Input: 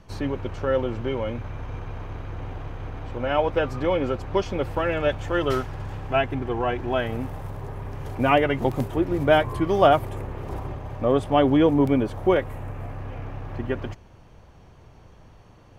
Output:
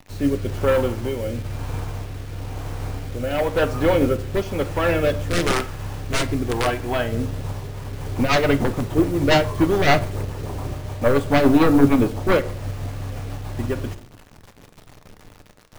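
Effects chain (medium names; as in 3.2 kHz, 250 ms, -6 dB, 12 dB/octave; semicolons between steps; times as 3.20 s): 5.20–6.67 s: integer overflow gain 16.5 dB; resampled via 22.05 kHz; sine folder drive 13 dB, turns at -3 dBFS; rotary cabinet horn 1 Hz, later 7 Hz, at 7.27 s; bit crusher 5-bit; on a send at -8.5 dB: reverberation RT60 0.55 s, pre-delay 3 ms; on the sum: upward expansion 1.5:1, over -19 dBFS; trim -6.5 dB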